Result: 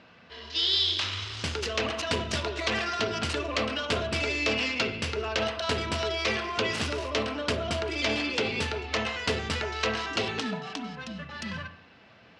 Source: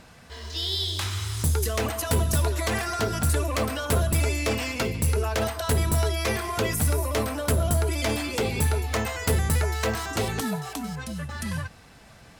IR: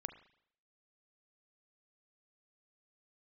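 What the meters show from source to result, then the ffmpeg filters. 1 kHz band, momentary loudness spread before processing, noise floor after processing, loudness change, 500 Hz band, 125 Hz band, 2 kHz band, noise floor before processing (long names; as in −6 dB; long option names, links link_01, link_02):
−2.0 dB, 8 LU, −55 dBFS, −2.5 dB, −2.5 dB, −12.0 dB, +1.5 dB, −50 dBFS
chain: -filter_complex "[0:a]aemphasis=mode=production:type=75fm,adynamicsmooth=sensitivity=3.5:basefreq=2600,highpass=140,equalizer=frequency=150:width_type=q:width=4:gain=-7,equalizer=frequency=820:width_type=q:width=4:gain=-3,equalizer=frequency=2800:width_type=q:width=4:gain=6,lowpass=frequency=5100:width=0.5412,lowpass=frequency=5100:width=1.3066[link_01];[1:a]atrim=start_sample=2205[link_02];[link_01][link_02]afir=irnorm=-1:irlink=0,volume=1.5dB"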